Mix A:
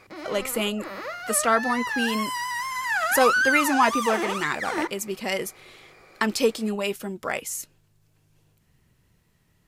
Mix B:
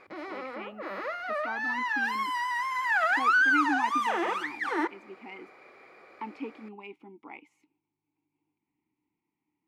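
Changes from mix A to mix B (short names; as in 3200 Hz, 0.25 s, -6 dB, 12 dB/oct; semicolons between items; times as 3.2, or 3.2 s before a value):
speech: add vowel filter u; master: add tone controls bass -6 dB, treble -15 dB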